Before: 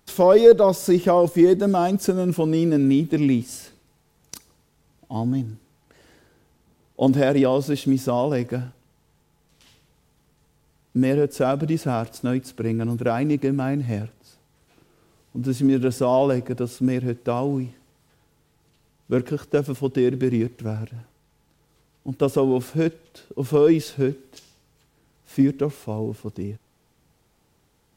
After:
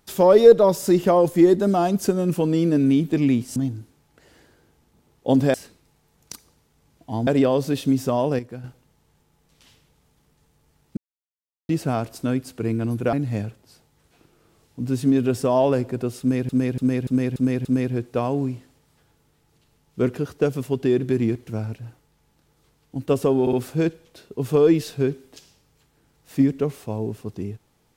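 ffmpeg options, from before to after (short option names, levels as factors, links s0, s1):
-filter_complex "[0:a]asplit=16[s0][s1][s2][s3][s4][s5][s6][s7][s8][s9][s10][s11][s12][s13][s14][s15];[s0]atrim=end=3.562[s16];[s1]atrim=start=5.288:end=7.272[s17];[s2]atrim=start=3.558:end=5.292[s18];[s3]atrim=start=7.268:end=8.392[s19];[s4]atrim=start=8.388:end=8.642,asetpts=PTS-STARTPTS,volume=0.335[s20];[s5]atrim=start=8.638:end=10.97,asetpts=PTS-STARTPTS,afade=t=out:st=2.328:d=0.004:c=hsin[s21];[s6]atrim=start=10.97:end=11.69,asetpts=PTS-STARTPTS,volume=0[s22];[s7]atrim=start=11.69:end=13.132,asetpts=PTS-STARTPTS,afade=t=in:d=0.004:c=hsin[s23];[s8]atrim=start=13.698:end=17.062[s24];[s9]atrim=start=16.768:end=17.062[s25];[s10]atrim=start=16.768:end=17.062[s26];[s11]atrim=start=16.768:end=17.062[s27];[s12]atrim=start=16.768:end=17.062[s28];[s13]atrim=start=16.768:end=22.592[s29];[s14]atrim=start=22.528:end=22.592[s30];[s15]atrim=start=22.528[s31];[s16][s17]acrossfade=d=0.004:c1=hsin:c2=hsin[s32];[s32][s18]acrossfade=d=0.004:c1=hsin:c2=hsin[s33];[s33][s19]acrossfade=d=0.004:c1=hsin:c2=hsin[s34];[s34][s20]acrossfade=d=0.004:c1=hsin:c2=hsin[s35];[s21][s22][s23]concat=n=3:v=0:a=1[s36];[s35][s36]acrossfade=d=0.004:c1=hsin:c2=hsin[s37];[s37][s24]acrossfade=d=0.004:c1=hsin:c2=hsin[s38];[s38][s25]acrossfade=d=0.004:c1=hsin:c2=hsin[s39];[s39][s26]acrossfade=d=0.004:c1=hsin:c2=hsin[s40];[s40][s27]acrossfade=d=0.004:c1=hsin:c2=hsin[s41];[s41][s28]acrossfade=d=0.004:c1=hsin:c2=hsin[s42];[s42][s29]acrossfade=d=0.004:c1=hsin:c2=hsin[s43];[s43][s30]acrossfade=d=0.004:c1=hsin:c2=hsin[s44];[s44][s31]acrossfade=d=0.004:c1=hsin:c2=hsin"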